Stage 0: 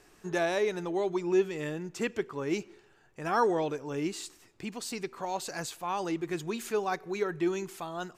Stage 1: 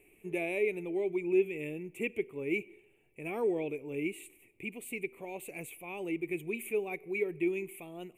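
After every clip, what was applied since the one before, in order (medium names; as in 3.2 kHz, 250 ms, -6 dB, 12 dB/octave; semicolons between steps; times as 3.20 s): FFT filter 180 Hz 0 dB, 410 Hz +5 dB, 1.6 kHz -20 dB, 2.3 kHz +15 dB, 5 kHz -30 dB, 9.7 kHz +8 dB; trim -6 dB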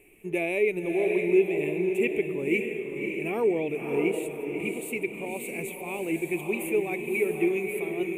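echo that smears into a reverb 581 ms, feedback 42%, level -4 dB; trim +6 dB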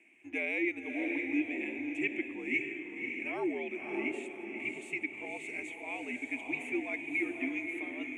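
frequency shift -80 Hz; cabinet simulation 490–6300 Hz, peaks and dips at 540 Hz -9 dB, 1.1 kHz -4 dB, 4 kHz -6 dB; trim -1.5 dB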